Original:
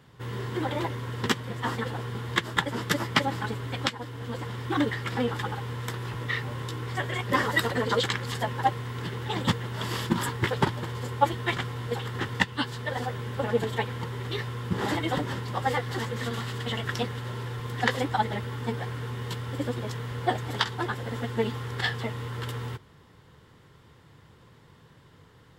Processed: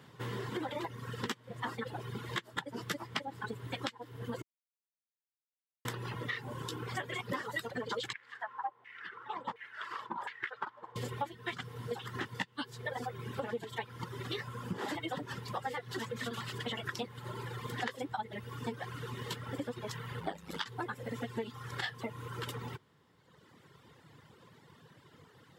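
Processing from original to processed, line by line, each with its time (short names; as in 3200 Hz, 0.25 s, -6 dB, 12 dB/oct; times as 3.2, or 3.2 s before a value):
4.42–5.85 mute
8.13–10.96 LFO band-pass saw down 1.4 Hz 800–2200 Hz
20.2–20.66 ring modulator 50 Hz
whole clip: reverb removal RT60 1.7 s; HPF 130 Hz 12 dB/oct; compressor 6:1, threshold -36 dBFS; gain +1 dB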